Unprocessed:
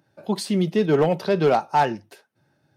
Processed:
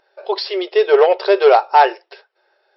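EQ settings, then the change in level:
linear-phase brick-wall band-pass 360–5,600 Hz
+8.5 dB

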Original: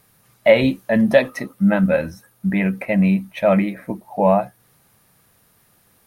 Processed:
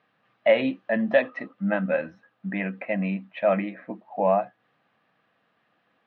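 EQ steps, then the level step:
loudspeaker in its box 360–2,700 Hz, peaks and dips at 400 Hz −10 dB, 570 Hz −4 dB, 920 Hz −8 dB, 1,400 Hz −5 dB, 2,200 Hz −7 dB
0.0 dB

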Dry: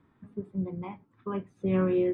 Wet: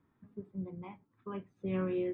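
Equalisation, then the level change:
dynamic equaliser 3,000 Hz, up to +5 dB, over −52 dBFS, Q 0.93
high-frequency loss of the air 66 metres
−8.0 dB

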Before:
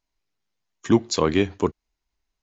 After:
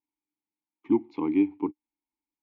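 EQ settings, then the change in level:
formant filter u
high-frequency loss of the air 250 metres
high-shelf EQ 5,700 Hz −10 dB
+4.0 dB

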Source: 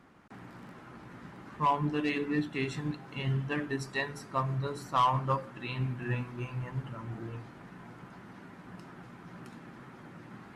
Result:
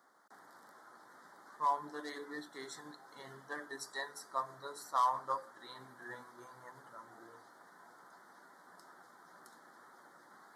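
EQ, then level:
high-pass filter 630 Hz 12 dB per octave
Butterworth band-reject 2,600 Hz, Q 1.3
high-shelf EQ 8,000 Hz +10 dB
−4.0 dB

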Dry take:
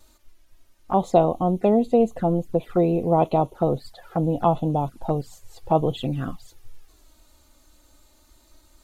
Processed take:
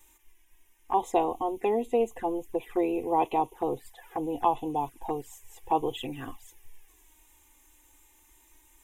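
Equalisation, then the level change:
tilt shelving filter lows −4.5 dB
low-shelf EQ 250 Hz −3.5 dB
phaser with its sweep stopped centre 900 Hz, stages 8
0.0 dB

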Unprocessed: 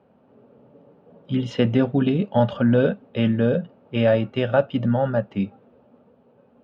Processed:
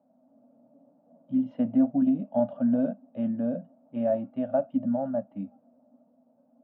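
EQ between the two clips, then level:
pair of resonant band-passes 410 Hz, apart 1.3 octaves
high-frequency loss of the air 67 metres
0.0 dB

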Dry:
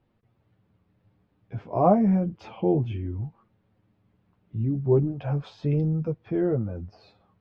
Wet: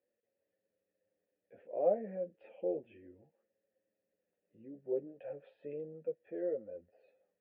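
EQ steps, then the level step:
formant filter e
high-frequency loss of the air 370 metres
parametric band 120 Hz −15 dB 0.58 octaves
0.0 dB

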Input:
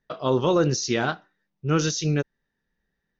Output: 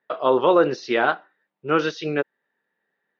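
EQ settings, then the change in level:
band-pass filter 470–6,400 Hz
high-frequency loss of the air 380 metres
+9.0 dB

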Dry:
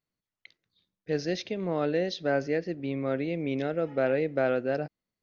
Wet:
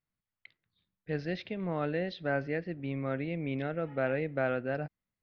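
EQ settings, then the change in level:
high-frequency loss of the air 390 metres
parametric band 400 Hz −9.5 dB 2.1 octaves
+3.5 dB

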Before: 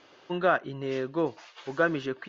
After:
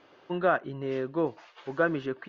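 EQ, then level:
low-pass filter 2,000 Hz 6 dB per octave
0.0 dB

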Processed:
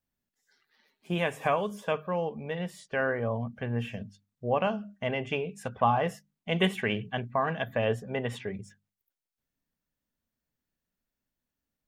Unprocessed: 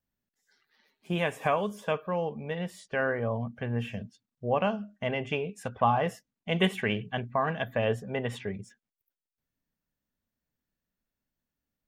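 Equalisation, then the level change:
mains-hum notches 50/100/150/200 Hz
0.0 dB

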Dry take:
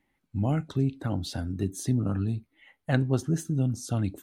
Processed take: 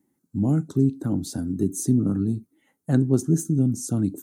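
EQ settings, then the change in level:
high-pass filter 170 Hz 12 dB per octave
flat-topped bell 1,300 Hz −13 dB 3 octaves
flat-topped bell 3,200 Hz −10 dB
+9.0 dB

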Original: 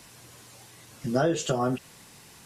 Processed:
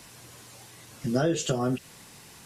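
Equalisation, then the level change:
dynamic equaliser 920 Hz, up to −7 dB, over −41 dBFS, Q 0.95
+1.5 dB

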